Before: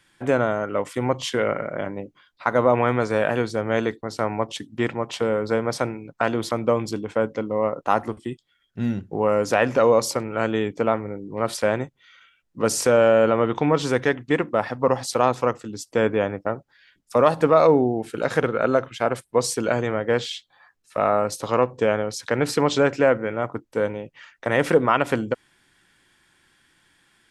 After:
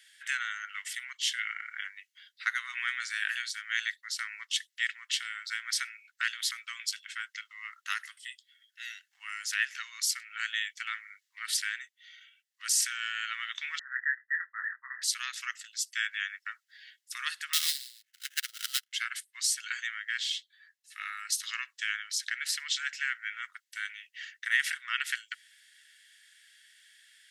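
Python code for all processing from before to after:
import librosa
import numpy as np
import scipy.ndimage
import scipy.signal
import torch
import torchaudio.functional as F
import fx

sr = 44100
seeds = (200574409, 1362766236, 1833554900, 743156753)

y = fx.chain(x, sr, fx.brickwall_lowpass(high_hz=2000.0),
    fx.doubler(ms=23.0, db=-5.5), at=(13.79, 15.02))
y = fx.chain(y, sr, fx.high_shelf(hz=10000.0, db=-10.0),
    fx.sample_hold(seeds[0], rate_hz=4500.0, jitter_pct=20),
    fx.upward_expand(threshold_db=-36.0, expansion=2.5), at=(17.53, 18.93))
y = scipy.signal.sosfilt(scipy.signal.butter(8, 1700.0, 'highpass', fs=sr, output='sos'), y)
y = fx.notch(y, sr, hz=2400.0, q=9.1)
y = fx.rider(y, sr, range_db=3, speed_s=0.5)
y = y * 10.0 ** (2.0 / 20.0)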